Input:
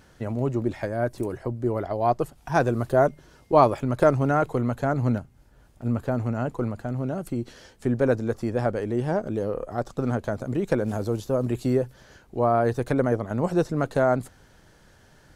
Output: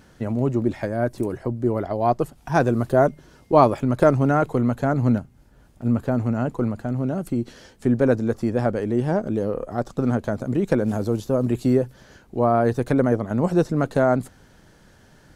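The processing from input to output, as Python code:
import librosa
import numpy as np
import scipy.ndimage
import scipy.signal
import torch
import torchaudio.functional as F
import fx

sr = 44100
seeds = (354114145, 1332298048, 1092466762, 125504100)

y = fx.peak_eq(x, sr, hz=220.0, db=4.5, octaves=1.2)
y = y * 10.0 ** (1.5 / 20.0)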